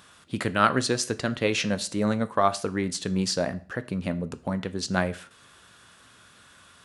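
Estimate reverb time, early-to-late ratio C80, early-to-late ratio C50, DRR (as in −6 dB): 0.40 s, 22.0 dB, 18.0 dB, 12.0 dB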